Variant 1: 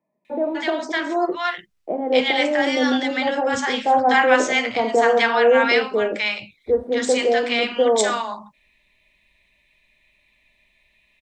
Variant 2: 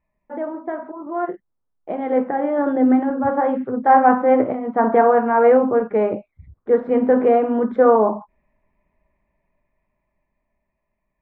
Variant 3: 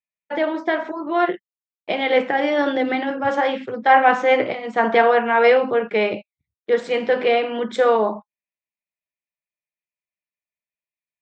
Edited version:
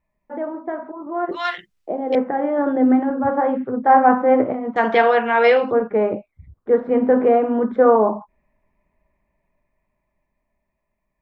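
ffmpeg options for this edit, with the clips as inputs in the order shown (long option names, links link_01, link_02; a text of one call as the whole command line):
ffmpeg -i take0.wav -i take1.wav -i take2.wav -filter_complex "[1:a]asplit=3[link_01][link_02][link_03];[link_01]atrim=end=1.312[link_04];[0:a]atrim=start=1.308:end=2.152[link_05];[link_02]atrim=start=2.148:end=4.762[link_06];[2:a]atrim=start=4.758:end=5.722[link_07];[link_03]atrim=start=5.718[link_08];[link_04][link_05]acrossfade=duration=0.004:curve1=hsin:curve2=hsin[link_09];[link_09][link_06]acrossfade=duration=0.004:curve1=hsin:curve2=hsin[link_10];[link_10][link_07]acrossfade=duration=0.004:curve1=hsin:curve2=hsin[link_11];[link_11][link_08]acrossfade=duration=0.004:curve1=hsin:curve2=hsin" out.wav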